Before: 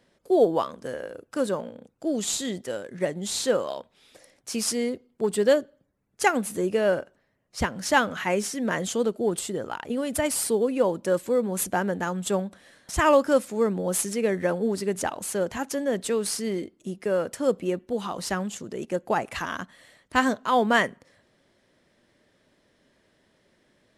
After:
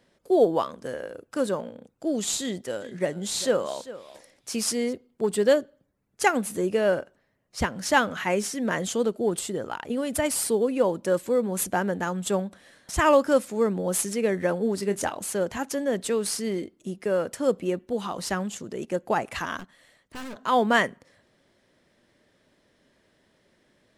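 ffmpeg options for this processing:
-filter_complex "[0:a]asettb=1/sr,asplit=3[a][b][c];[a]atrim=end=2.414[d];[b]atrim=start=2.41:end=4.93,asetpts=PTS-STARTPTS,afade=t=in:d=0.004:c=qsin,afade=t=out:st=2.516:d=0.004:c=qsin,aecho=1:1:397:0.158,atrim=end_sample=111132[e];[c]atrim=start=4.926[f];[d][e]acrossfade=d=0.004:c1=hsin:c2=qsin[g];[g][f]acrossfade=d=0.004:c1=qsin:c2=hsin,asettb=1/sr,asplit=3[h][i][j];[h]atrim=end=14.804[k];[i]atrim=start=14.8:end=15.24,asetpts=PTS-STARTPTS,afade=t=in:d=0.004:c=qsin,afade=t=out:st=0.436:d=0.004:c=qsin,asplit=2[l][m];[m]adelay=25,volume=-11dB[n];[l][n]amix=inputs=2:normalize=0,atrim=end_sample=19404[o];[j]atrim=start=15.236[p];[k][o]acrossfade=d=0.004:c1=hsin:c2=qsin[q];[q][p]acrossfade=d=0.004:c1=qsin:c2=hsin,asettb=1/sr,asplit=3[r][s][t];[r]atrim=end=19.594[u];[s]atrim=start=19.59:end=20.36,asetpts=PTS-STARTPTS,afade=t=in:d=0.004:c=qsin,afade=t=out:st=0.766:d=0.004:c=qsin,aeval=exprs='(tanh(63.1*val(0)+0.75)-tanh(0.75))/63.1':c=same[v];[t]atrim=start=20.356[w];[u][v]acrossfade=d=0.004:c1=hsin:c2=qsin[x];[x][w]acrossfade=d=0.004:c1=qsin:c2=hsin"

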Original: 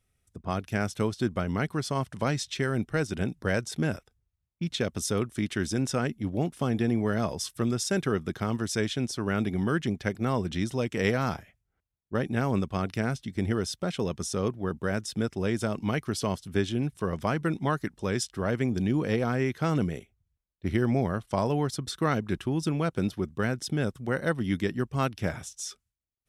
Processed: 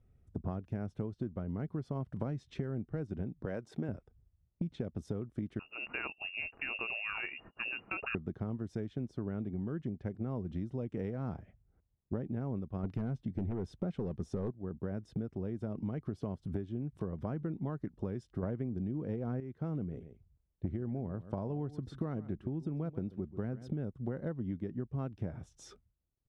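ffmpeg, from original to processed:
-filter_complex "[0:a]asettb=1/sr,asplit=3[a][b][c];[a]atrim=end=3.454[d];[b]atrim=start=3.45:end=3.89,asetpts=PTS-STARTPTS,afade=t=in:d=0.004:c=qsin,afade=t=out:st=0.436:d=0.004:c=qsin,highpass=f=410:p=1[e];[c]atrim=start=3.886[f];[d][e]acrossfade=d=0.004:c1=hsin:c2=qsin[g];[g][f]acrossfade=d=0.004:c1=qsin:c2=hsin,asettb=1/sr,asplit=3[h][i][j];[h]atrim=end=5.594[k];[i]atrim=start=5.59:end=8.15,asetpts=PTS-STARTPTS,afade=t=in:d=0.004:c=qsin,afade=t=out:st=2.556:d=0.004:c=qsin,lowpass=f=2.5k:t=q:w=0.5098,lowpass=f=2.5k:t=q:w=0.6013,lowpass=f=2.5k:t=q:w=0.9,lowpass=f=2.5k:t=q:w=2.563,afreqshift=-2900[l];[j]atrim=start=8.146[m];[k][l]acrossfade=d=0.004:c1=hsin:c2=qsin[n];[n][m]acrossfade=d=0.004:c1=qsin:c2=hsin,asplit=3[o][p][q];[o]afade=t=out:st=12.83:d=0.02[r];[p]aeval=exprs='0.224*sin(PI/2*2.51*val(0)/0.224)':c=same,afade=t=in:st=12.83:d=0.02,afade=t=out:st=14.5:d=0.02[s];[q]afade=t=in:st=14.5:d=0.02[t];[r][s][t]amix=inputs=3:normalize=0,asettb=1/sr,asplit=3[u][v][w];[u]atrim=end=15.164[x];[v]atrim=start=15.16:end=17.65,asetpts=PTS-STARTPTS,afade=t=in:d=0.004:c=qsin,afade=t=out:st=2.486:d=0.004:c=qsin,acompressor=mode=upward:threshold=-30dB:ratio=2.5:attack=3.2:release=140:knee=2.83:detection=peak[y];[w]atrim=start=17.646[z];[x][y]acrossfade=d=0.004:c1=hsin:c2=qsin[aa];[aa][z]acrossfade=d=0.004:c1=qsin:c2=hsin,asplit=3[ab][ac][ad];[ab]afade=t=out:st=19.91:d=0.02[ae];[ac]aecho=1:1:135:0.126,afade=t=in:st=19.91:d=0.02,afade=t=out:st=23.74:d=0.02[af];[ad]afade=t=in:st=23.74:d=0.02[ag];[ae][af][ag]amix=inputs=3:normalize=0,asplit=3[ah][ai][aj];[ah]atrim=end=18.432[ak];[ai]atrim=start=18.428:end=19.402,asetpts=PTS-STARTPTS,volume=11dB[al];[aj]atrim=start=19.398[am];[ak][al]acrossfade=d=0.004:c1=hsin:c2=hsin[an];[an][am]acrossfade=d=0.004:c1=hsin:c2=hsin,lowpass=f=1.6k:p=1,tiltshelf=f=900:g=8.5,acompressor=threshold=-35dB:ratio=16,volume=1.5dB"

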